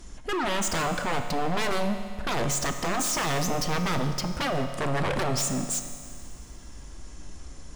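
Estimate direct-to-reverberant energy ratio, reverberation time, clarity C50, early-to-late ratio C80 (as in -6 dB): 6.5 dB, 2.1 s, 8.0 dB, 9.0 dB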